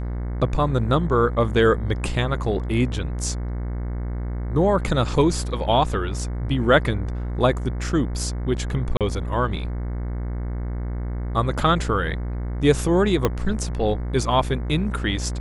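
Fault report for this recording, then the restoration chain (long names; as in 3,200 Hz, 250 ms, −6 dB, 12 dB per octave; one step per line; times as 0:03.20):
mains buzz 60 Hz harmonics 37 −27 dBFS
0:08.97–0:09.01: drop-out 37 ms
0:13.25: click −6 dBFS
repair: click removal
hum removal 60 Hz, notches 37
repair the gap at 0:08.97, 37 ms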